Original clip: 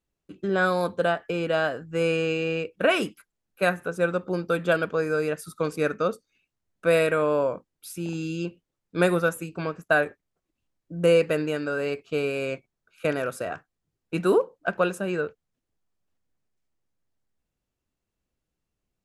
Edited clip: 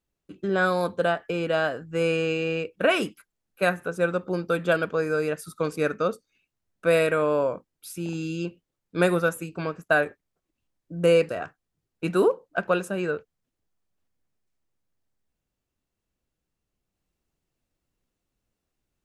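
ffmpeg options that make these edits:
-filter_complex "[0:a]asplit=2[s0][s1];[s0]atrim=end=11.292[s2];[s1]atrim=start=13.388[s3];[s2][s3]acrossfade=d=0.004:c1=hsin:c2=hsin"

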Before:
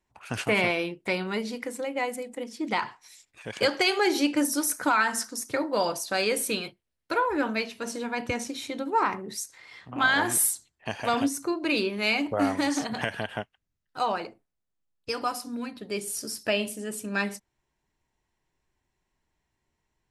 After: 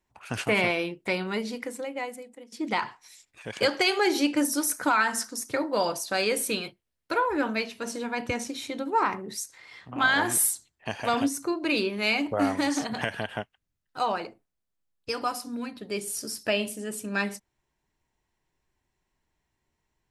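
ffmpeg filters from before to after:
-filter_complex "[0:a]asplit=2[s0][s1];[s0]atrim=end=2.52,asetpts=PTS-STARTPTS,afade=t=out:st=1.58:d=0.94:silence=0.158489[s2];[s1]atrim=start=2.52,asetpts=PTS-STARTPTS,afade=t=in:d=0.004:c=hsin:silence=0.158489[s3];[s2][s3]concat=n=2:v=0:a=1"

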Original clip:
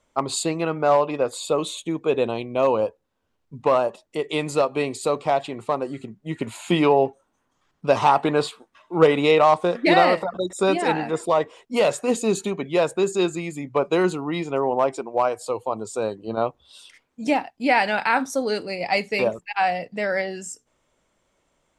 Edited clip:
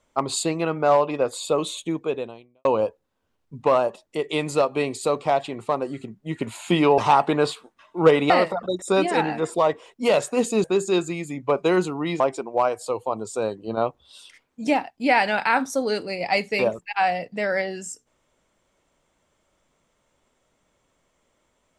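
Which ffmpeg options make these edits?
-filter_complex "[0:a]asplit=6[s0][s1][s2][s3][s4][s5];[s0]atrim=end=2.65,asetpts=PTS-STARTPTS,afade=t=out:st=1.94:d=0.71:c=qua[s6];[s1]atrim=start=2.65:end=6.982,asetpts=PTS-STARTPTS,afade=t=in:d=0.004:c=hsin[s7];[s2]atrim=start=7.938:end=9.262[s8];[s3]atrim=start=10.008:end=12.352[s9];[s4]atrim=start=12.908:end=14.472[s10];[s5]atrim=start=14.798[s11];[s6][s7]concat=n=2:v=0:a=1[s12];[s12][s8]acrossfade=d=0.004:c1=hsin:c2=hsin[s13];[s13][s9]acrossfade=d=0.004:c1=hsin:c2=hsin[s14];[s14][s10]acrossfade=d=0.004:c1=hsin:c2=hsin[s15];[s15][s11]acrossfade=d=0.004:c1=hsin:c2=hsin"

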